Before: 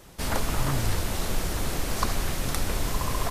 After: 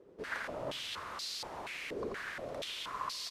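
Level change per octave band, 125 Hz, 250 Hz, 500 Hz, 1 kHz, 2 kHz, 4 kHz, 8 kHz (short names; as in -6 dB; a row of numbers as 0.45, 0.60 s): -26.0, -15.5, -7.5, -9.5, -6.0, -5.5, -15.5 dB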